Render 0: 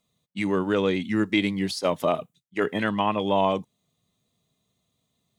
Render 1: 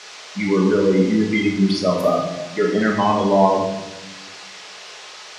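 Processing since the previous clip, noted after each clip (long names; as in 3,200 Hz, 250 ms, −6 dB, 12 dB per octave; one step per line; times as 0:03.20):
gate on every frequency bin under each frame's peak −15 dB strong
noise in a band 390–6,000 Hz −45 dBFS
rectangular room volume 430 cubic metres, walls mixed, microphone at 1.4 metres
level +3.5 dB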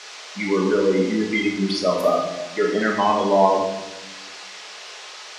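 parametric band 120 Hz −14.5 dB 1.3 octaves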